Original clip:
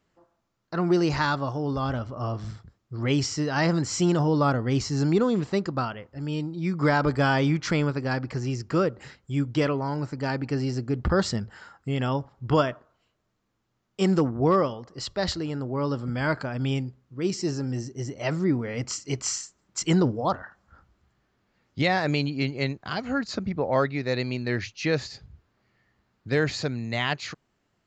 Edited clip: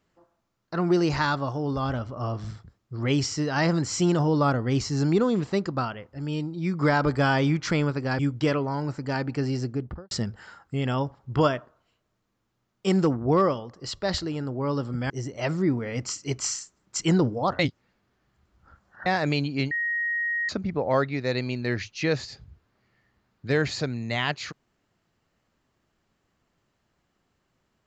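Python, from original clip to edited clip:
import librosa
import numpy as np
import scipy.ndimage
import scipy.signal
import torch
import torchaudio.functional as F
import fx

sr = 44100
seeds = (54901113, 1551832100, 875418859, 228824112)

y = fx.studio_fade_out(x, sr, start_s=10.76, length_s=0.49)
y = fx.edit(y, sr, fx.cut(start_s=8.19, length_s=1.14),
    fx.cut(start_s=16.24, length_s=1.68),
    fx.reverse_span(start_s=20.41, length_s=1.47),
    fx.bleep(start_s=22.53, length_s=0.78, hz=1880.0, db=-24.0), tone=tone)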